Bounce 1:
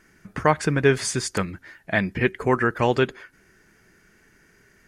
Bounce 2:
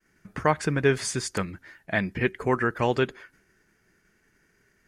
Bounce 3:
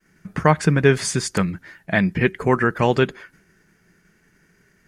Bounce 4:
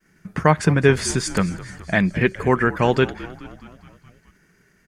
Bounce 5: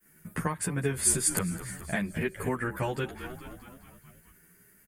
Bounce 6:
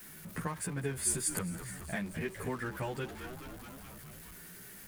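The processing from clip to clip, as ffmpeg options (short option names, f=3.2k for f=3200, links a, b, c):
-af "agate=range=-33dB:threshold=-52dB:ratio=3:detection=peak,volume=-3.5dB"
-af "equalizer=f=170:w=3.1:g=8.5,volume=5.5dB"
-filter_complex "[0:a]asplit=7[a][b][c][d][e][f][g];[b]adelay=211,afreqshift=-56,volume=-17.5dB[h];[c]adelay=422,afreqshift=-112,volume=-21.4dB[i];[d]adelay=633,afreqshift=-168,volume=-25.3dB[j];[e]adelay=844,afreqshift=-224,volume=-29.1dB[k];[f]adelay=1055,afreqshift=-280,volume=-33dB[l];[g]adelay=1266,afreqshift=-336,volume=-36.9dB[m];[a][h][i][j][k][l][m]amix=inputs=7:normalize=0"
-filter_complex "[0:a]acompressor=threshold=-22dB:ratio=6,aexciter=amount=10.9:drive=4.1:freq=8.3k,asplit=2[a][b];[b]adelay=11.2,afreqshift=1[c];[a][c]amix=inputs=2:normalize=1,volume=-2dB"
-af "aeval=exprs='val(0)+0.5*0.0126*sgn(val(0))':c=same,volume=-7.5dB"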